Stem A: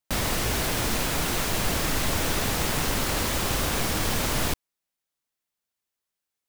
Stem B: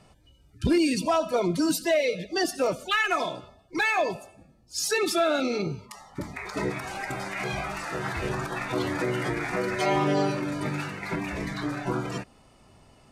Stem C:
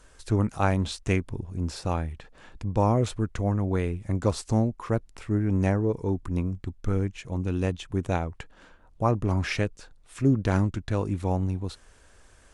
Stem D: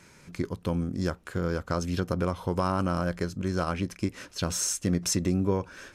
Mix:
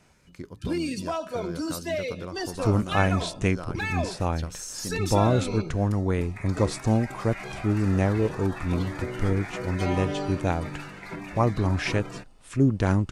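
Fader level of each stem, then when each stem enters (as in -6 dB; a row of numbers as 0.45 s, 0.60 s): mute, -6.5 dB, +1.0 dB, -9.0 dB; mute, 0.00 s, 2.35 s, 0.00 s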